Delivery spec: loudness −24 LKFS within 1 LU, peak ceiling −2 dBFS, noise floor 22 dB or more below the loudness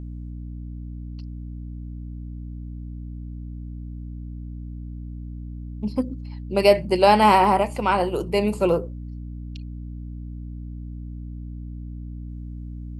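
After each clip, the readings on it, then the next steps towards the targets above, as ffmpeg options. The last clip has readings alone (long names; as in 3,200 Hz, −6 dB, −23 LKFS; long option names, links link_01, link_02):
mains hum 60 Hz; hum harmonics up to 300 Hz; level of the hum −32 dBFS; integrated loudness −20.0 LKFS; sample peak −1.5 dBFS; target loudness −24.0 LKFS
→ -af "bandreject=frequency=60:width_type=h:width=6,bandreject=frequency=120:width_type=h:width=6,bandreject=frequency=180:width_type=h:width=6,bandreject=frequency=240:width_type=h:width=6,bandreject=frequency=300:width_type=h:width=6"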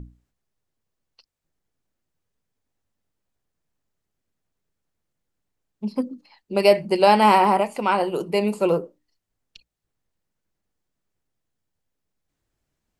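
mains hum none found; integrated loudness −20.0 LKFS; sample peak −2.0 dBFS; target loudness −24.0 LKFS
→ -af "volume=-4dB"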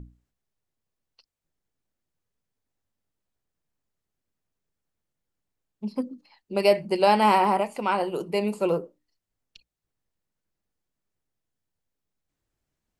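integrated loudness −24.0 LKFS; sample peak −6.0 dBFS; background noise floor −84 dBFS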